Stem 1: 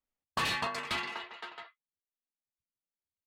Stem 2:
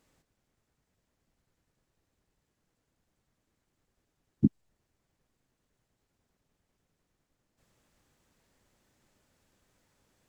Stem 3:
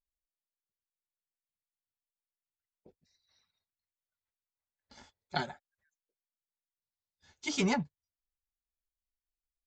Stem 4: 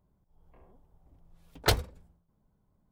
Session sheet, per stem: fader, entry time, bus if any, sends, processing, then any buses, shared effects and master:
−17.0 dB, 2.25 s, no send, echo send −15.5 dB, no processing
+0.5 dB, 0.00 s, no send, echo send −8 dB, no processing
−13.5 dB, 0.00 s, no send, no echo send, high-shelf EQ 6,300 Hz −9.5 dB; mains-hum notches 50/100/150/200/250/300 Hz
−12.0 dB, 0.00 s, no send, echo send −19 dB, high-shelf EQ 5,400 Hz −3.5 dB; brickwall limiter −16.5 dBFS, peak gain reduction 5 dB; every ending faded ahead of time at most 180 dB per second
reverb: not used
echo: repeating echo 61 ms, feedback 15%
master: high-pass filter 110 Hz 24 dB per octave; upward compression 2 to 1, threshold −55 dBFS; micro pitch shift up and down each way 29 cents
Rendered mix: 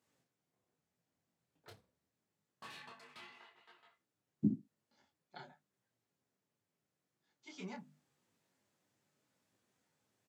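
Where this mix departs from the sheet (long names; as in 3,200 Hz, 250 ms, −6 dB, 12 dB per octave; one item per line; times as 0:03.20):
stem 2 +0.5 dB → −5.5 dB
stem 4 −12.0 dB → −23.5 dB
master: missing upward compression 2 to 1, threshold −55 dBFS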